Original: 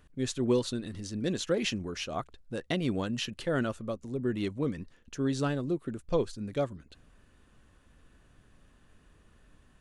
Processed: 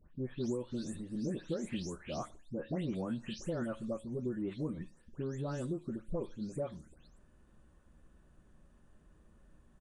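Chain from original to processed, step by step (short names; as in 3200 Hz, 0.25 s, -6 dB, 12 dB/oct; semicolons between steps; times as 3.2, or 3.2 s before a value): spectral delay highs late, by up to 0.25 s; bell 3200 Hz -11 dB 2.6 oct; compressor 6:1, threshold -32 dBFS, peak gain reduction 10 dB; on a send at -15 dB: reverb RT60 0.40 s, pre-delay 3 ms; on the sum: downsampling 22050 Hz; gain -1 dB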